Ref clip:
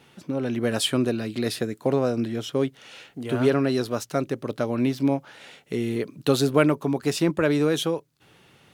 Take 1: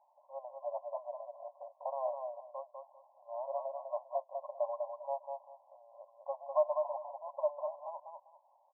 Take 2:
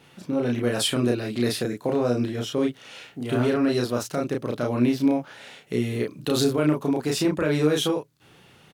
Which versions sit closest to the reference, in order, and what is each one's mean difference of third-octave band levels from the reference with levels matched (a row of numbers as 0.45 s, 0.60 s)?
2, 1; 3.0 dB, 22.0 dB